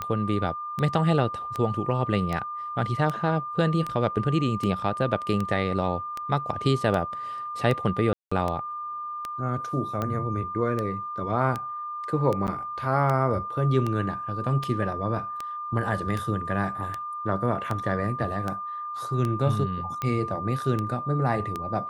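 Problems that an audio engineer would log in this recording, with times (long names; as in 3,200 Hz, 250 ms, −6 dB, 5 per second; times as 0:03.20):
scratch tick 78 rpm −16 dBFS
whistle 1,200 Hz −31 dBFS
0:08.13–0:08.31: drop-out 185 ms
0:12.47–0:12.48: drop-out 9 ms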